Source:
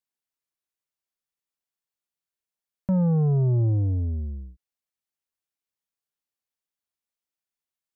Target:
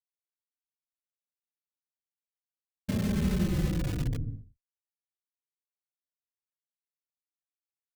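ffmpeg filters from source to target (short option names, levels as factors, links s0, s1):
-filter_complex "[0:a]afftfilt=real='hypot(re,im)*cos(2*PI*random(0))':imag='hypot(re,im)*sin(2*PI*random(1))':win_size=512:overlap=0.75,agate=range=0.0224:threshold=0.0178:ratio=3:detection=peak,asplit=2[s0][s1];[s1]aeval=exprs='(mod(20*val(0)+1,2)-1)/20':c=same,volume=0.596[s2];[s0][s2]amix=inputs=2:normalize=0,equalizer=f=870:t=o:w=1.1:g=-10,asplit=2[s3][s4];[s4]adelay=3.6,afreqshift=-0.52[s5];[s3][s5]amix=inputs=2:normalize=1,volume=1.26"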